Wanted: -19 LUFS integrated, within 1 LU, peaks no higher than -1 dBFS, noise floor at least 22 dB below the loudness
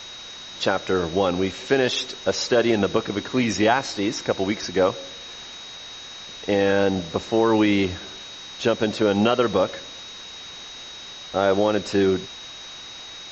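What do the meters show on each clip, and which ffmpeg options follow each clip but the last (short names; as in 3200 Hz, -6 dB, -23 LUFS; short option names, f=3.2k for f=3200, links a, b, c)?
steady tone 3800 Hz; tone level -38 dBFS; noise floor -39 dBFS; noise floor target -44 dBFS; loudness -22.0 LUFS; peak -5.0 dBFS; loudness target -19.0 LUFS
-> -af "bandreject=f=3.8k:w=30"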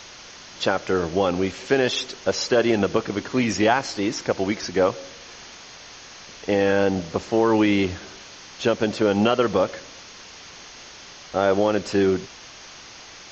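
steady tone none; noise floor -43 dBFS; noise floor target -44 dBFS
-> -af "afftdn=nr=6:nf=-43"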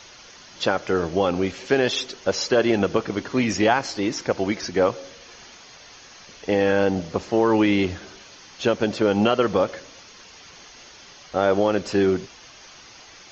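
noise floor -46 dBFS; loudness -22.5 LUFS; peak -5.0 dBFS; loudness target -19.0 LUFS
-> -af "volume=3.5dB"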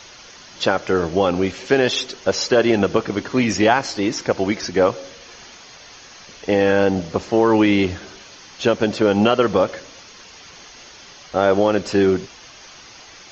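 loudness -19.0 LUFS; peak -1.5 dBFS; noise floor -43 dBFS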